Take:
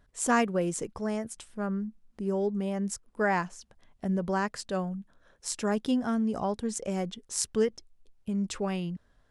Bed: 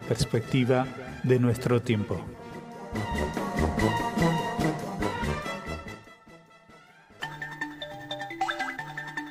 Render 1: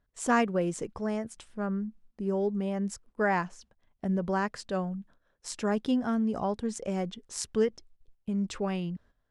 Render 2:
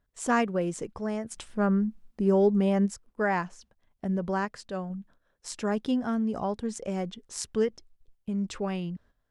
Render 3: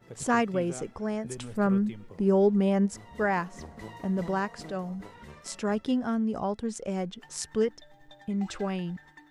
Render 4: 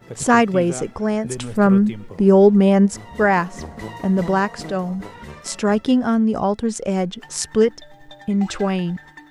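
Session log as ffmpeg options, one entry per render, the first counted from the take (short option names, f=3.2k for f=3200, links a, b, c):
-af "agate=range=-11dB:threshold=-54dB:ratio=16:detection=peak,highshelf=f=7.9k:g=-12"
-filter_complex "[0:a]asplit=3[a][b][c];[a]afade=t=out:st=1.3:d=0.02[d];[b]acontrast=83,afade=t=in:st=1.3:d=0.02,afade=t=out:st=2.85:d=0.02[e];[c]afade=t=in:st=2.85:d=0.02[f];[d][e][f]amix=inputs=3:normalize=0,asplit=3[g][h][i];[g]atrim=end=4.452[j];[h]atrim=start=4.448:end=4.902,asetpts=PTS-STARTPTS,volume=-3dB[k];[i]atrim=start=4.898[l];[j][k]acrossfade=d=0.004:c1=hsin:c2=hsin[m];[m][l]acrossfade=d=0.004:c1=hsin:c2=hsin"
-filter_complex "[1:a]volume=-18dB[a];[0:a][a]amix=inputs=2:normalize=0"
-af "volume=10.5dB"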